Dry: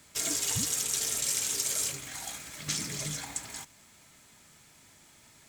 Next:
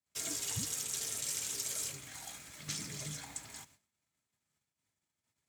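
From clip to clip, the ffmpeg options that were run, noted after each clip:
-filter_complex "[0:a]agate=range=-31dB:threshold=-54dB:ratio=16:detection=peak,highpass=86,acrossover=split=110|720|4800[a][b][c][d];[a]acontrast=90[e];[e][b][c][d]amix=inputs=4:normalize=0,volume=-7.5dB"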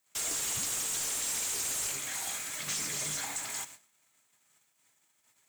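-filter_complex "[0:a]aexciter=amount=3:drive=2.9:freq=6.8k,asplit=2[a][b];[b]highpass=f=720:p=1,volume=28dB,asoftclip=type=tanh:threshold=-16dB[c];[a][c]amix=inputs=2:normalize=0,lowpass=f=4.6k:p=1,volume=-6dB,volume=-6dB"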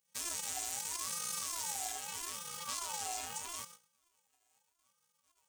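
-af "afftfilt=real='hypot(re,im)*cos(PI*b)':imag='0':win_size=512:overlap=0.75,asubboost=boost=12:cutoff=160,aeval=exprs='val(0)*sin(2*PI*990*n/s+990*0.25/0.79*sin(2*PI*0.79*n/s))':c=same"

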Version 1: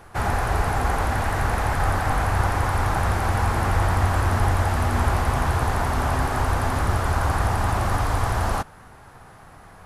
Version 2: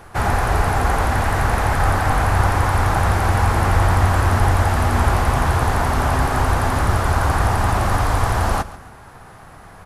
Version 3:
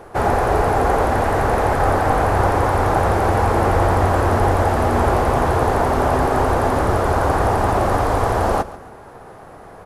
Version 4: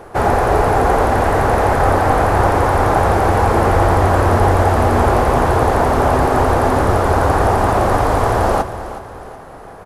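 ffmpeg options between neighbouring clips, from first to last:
-af "aecho=1:1:139|278|417:0.141|0.0494|0.0173,volume=4.5dB"
-af "equalizer=f=460:t=o:w=1.9:g=13.5,volume=-4.5dB"
-af "aecho=1:1:369|738|1107|1476:0.211|0.0909|0.0391|0.0168,volume=3dB"

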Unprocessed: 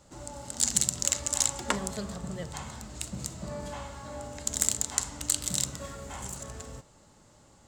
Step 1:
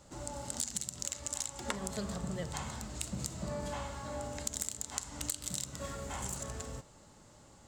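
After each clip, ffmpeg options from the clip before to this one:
-af "acompressor=threshold=-32dB:ratio=12"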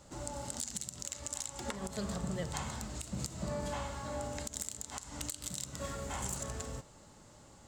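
-af "alimiter=limit=-21.5dB:level=0:latency=1:release=161,volume=1dB"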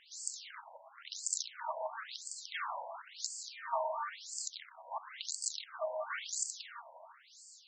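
-af "asoftclip=type=tanh:threshold=-29.5dB,afreqshift=73,afftfilt=real='re*between(b*sr/1024,720*pow(6300/720,0.5+0.5*sin(2*PI*0.97*pts/sr))/1.41,720*pow(6300/720,0.5+0.5*sin(2*PI*0.97*pts/sr))*1.41)':imag='im*between(b*sr/1024,720*pow(6300/720,0.5+0.5*sin(2*PI*0.97*pts/sr))/1.41,720*pow(6300/720,0.5+0.5*sin(2*PI*0.97*pts/sr))*1.41)':win_size=1024:overlap=0.75,volume=9.5dB"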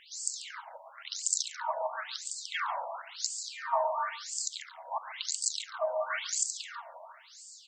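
-filter_complex "[0:a]asplit=2[a][b];[b]adelay=139.9,volume=-15dB,highshelf=f=4k:g=-3.15[c];[a][c]amix=inputs=2:normalize=0,volume=6dB"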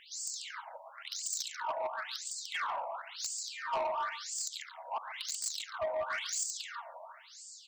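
-af "asoftclip=type=tanh:threshold=-28.5dB"

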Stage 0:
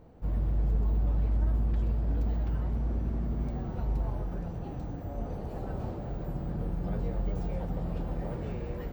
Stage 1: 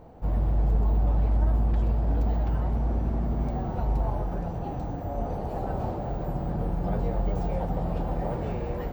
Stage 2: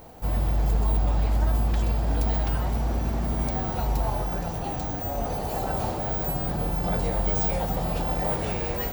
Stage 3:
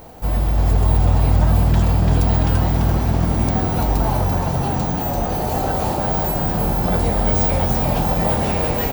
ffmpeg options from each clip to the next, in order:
-af "equalizer=f=780:w=1.5:g=7.5,volume=4dB"
-af "crystalizer=i=10:c=0"
-filter_complex "[0:a]asplit=8[a][b][c][d][e][f][g][h];[b]adelay=339,afreqshift=41,volume=-4dB[i];[c]adelay=678,afreqshift=82,volume=-9.2dB[j];[d]adelay=1017,afreqshift=123,volume=-14.4dB[k];[e]adelay=1356,afreqshift=164,volume=-19.6dB[l];[f]adelay=1695,afreqshift=205,volume=-24.8dB[m];[g]adelay=2034,afreqshift=246,volume=-30dB[n];[h]adelay=2373,afreqshift=287,volume=-35.2dB[o];[a][i][j][k][l][m][n][o]amix=inputs=8:normalize=0,volume=6dB"

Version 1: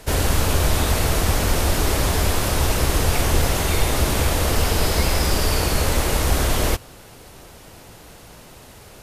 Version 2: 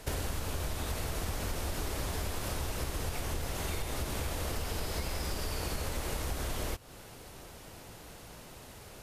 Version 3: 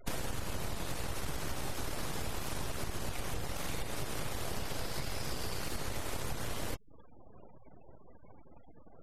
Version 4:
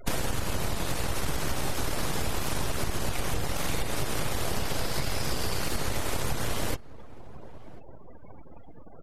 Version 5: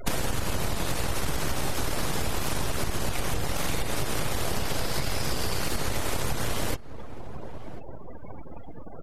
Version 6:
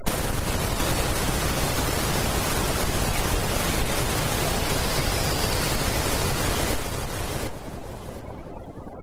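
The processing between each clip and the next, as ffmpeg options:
-af "acompressor=threshold=-25dB:ratio=10,volume=-6dB"
-af "aeval=exprs='abs(val(0))':c=same,afftfilt=real='re*gte(hypot(re,im),0.00447)':imag='im*gte(hypot(re,im),0.00447)':win_size=1024:overlap=0.75"
-filter_complex "[0:a]asplit=2[a][b];[b]adelay=1044,lowpass=f=1.3k:p=1,volume=-19.5dB,asplit=2[c][d];[d]adelay=1044,lowpass=f=1.3k:p=1,volume=0.27[e];[a][c][e]amix=inputs=3:normalize=0,volume=8dB"
-af "acompressor=threshold=-33dB:ratio=2,volume=7dB"
-filter_complex "[0:a]asplit=2[a][b];[b]aecho=0:1:729|1458|2187:0.562|0.112|0.0225[c];[a][c]amix=inputs=2:normalize=0,volume=4.5dB" -ar 48000 -c:a libopus -b:a 20k

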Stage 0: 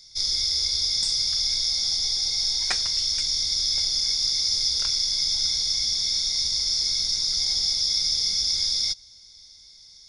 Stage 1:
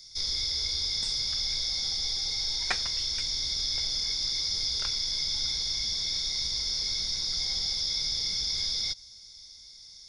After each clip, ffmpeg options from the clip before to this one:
-filter_complex "[0:a]acrossover=split=4100[a][b];[b]acompressor=threshold=-36dB:ratio=4:attack=1:release=60[c];[a][c]amix=inputs=2:normalize=0"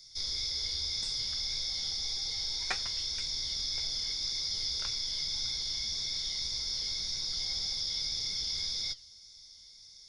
-af "flanger=delay=7.3:depth=6.1:regen=72:speed=1.8:shape=sinusoidal"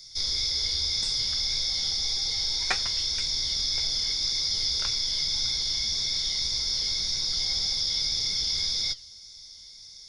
-af "acontrast=76"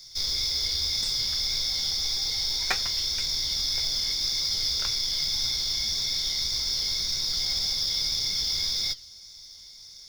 -af "acrusher=bits=4:mode=log:mix=0:aa=0.000001"

